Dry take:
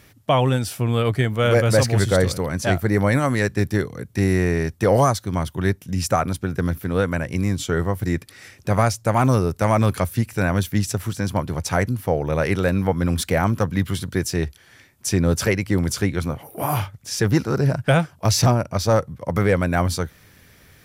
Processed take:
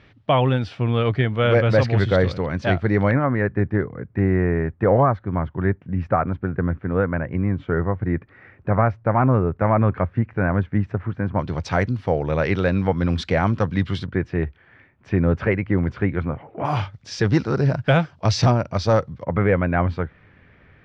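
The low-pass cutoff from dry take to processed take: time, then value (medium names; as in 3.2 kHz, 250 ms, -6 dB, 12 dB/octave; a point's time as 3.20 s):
low-pass 24 dB/octave
3.7 kHz
from 3.11 s 1.9 kHz
from 11.39 s 4.5 kHz
from 14.06 s 2.3 kHz
from 16.65 s 4.9 kHz
from 19.24 s 2.5 kHz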